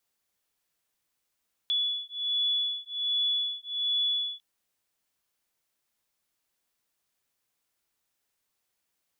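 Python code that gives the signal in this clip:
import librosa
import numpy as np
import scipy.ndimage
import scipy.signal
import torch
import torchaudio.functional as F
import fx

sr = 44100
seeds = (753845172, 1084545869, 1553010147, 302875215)

y = fx.two_tone_beats(sr, length_s=2.7, hz=3420.0, beat_hz=1.3, level_db=-29.5)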